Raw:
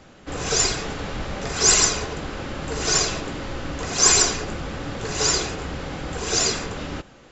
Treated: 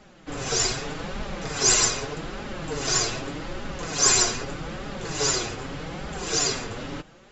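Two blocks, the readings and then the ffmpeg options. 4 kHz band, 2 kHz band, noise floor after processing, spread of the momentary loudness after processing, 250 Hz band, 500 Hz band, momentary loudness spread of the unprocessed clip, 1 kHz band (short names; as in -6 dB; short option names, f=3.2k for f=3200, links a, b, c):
-3.0 dB, -3.0 dB, -51 dBFS, 16 LU, -3.0 dB, -3.0 dB, 16 LU, -3.0 dB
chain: -af "flanger=delay=4.7:depth=4:regen=2:speed=0.82:shape=triangular"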